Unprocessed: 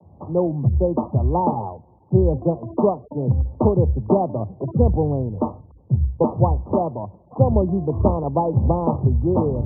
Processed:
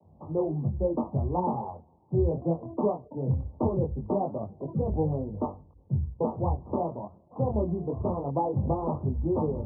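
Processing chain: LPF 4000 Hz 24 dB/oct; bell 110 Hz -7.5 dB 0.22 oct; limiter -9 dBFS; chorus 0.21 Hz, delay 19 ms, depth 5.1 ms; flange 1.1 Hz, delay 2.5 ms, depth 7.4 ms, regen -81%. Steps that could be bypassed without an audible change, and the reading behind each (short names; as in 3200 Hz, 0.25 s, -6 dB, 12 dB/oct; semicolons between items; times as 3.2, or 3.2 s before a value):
LPF 4000 Hz: input band ends at 1100 Hz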